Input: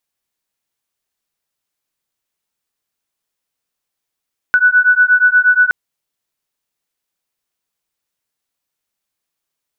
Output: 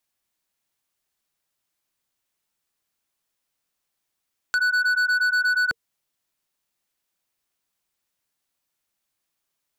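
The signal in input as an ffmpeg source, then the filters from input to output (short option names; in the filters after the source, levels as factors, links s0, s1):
-f lavfi -i "aevalsrc='0.282*(sin(2*PI*1480*t)+sin(2*PI*1488.4*t))':d=1.17:s=44100"
-filter_complex "[0:a]acrossover=split=290|3000[s0][s1][s2];[s1]acompressor=threshold=0.141:ratio=5[s3];[s0][s3][s2]amix=inputs=3:normalize=0,bandreject=f=460:w=12,volume=8.91,asoftclip=hard,volume=0.112"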